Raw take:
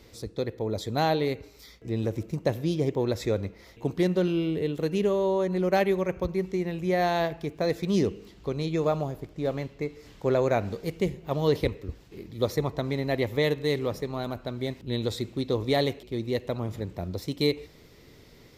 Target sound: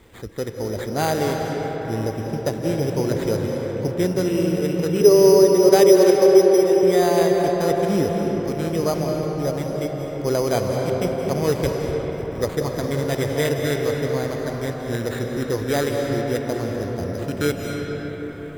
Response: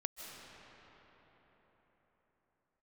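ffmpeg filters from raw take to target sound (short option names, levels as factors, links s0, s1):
-filter_complex "[0:a]asettb=1/sr,asplit=3[s0][s1][s2];[s0]atrim=end=5.014[s3];[s1]atrim=start=5.01:end=6.83,asetpts=PTS-STARTPTS,afade=t=in:d=0.004:c=qsin,afade=t=out:st=1.816:d=0.004:c=qsin,highpass=f=400:t=q:w=4[s4];[s2]atrim=start=6.826[s5];[s3][s4]acrossfade=d=0.004:c1=hsin:c2=qsin[s6];[s6][s5]acrossfade=d=0.004:c1=qsin:c2=hsin,acrusher=samples=8:mix=1:aa=0.000001[s7];[1:a]atrim=start_sample=2205,asetrate=38367,aresample=44100[s8];[s7][s8]afir=irnorm=-1:irlink=0,volume=1.68"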